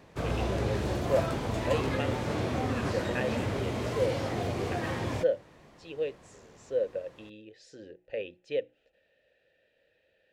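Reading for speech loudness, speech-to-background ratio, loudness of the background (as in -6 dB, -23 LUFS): -35.5 LUFS, -3.5 dB, -32.0 LUFS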